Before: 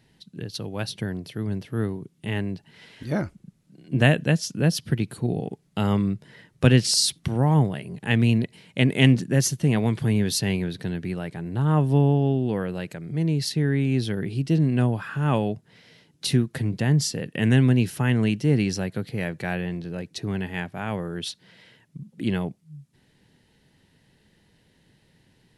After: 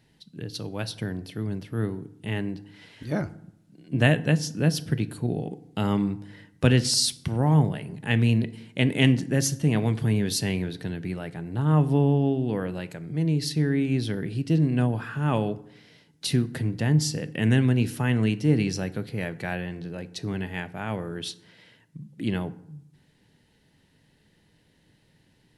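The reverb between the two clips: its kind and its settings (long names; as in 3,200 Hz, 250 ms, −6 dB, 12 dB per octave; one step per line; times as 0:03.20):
feedback delay network reverb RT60 0.74 s, low-frequency decay 1.3×, high-frequency decay 0.6×, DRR 13 dB
level −2 dB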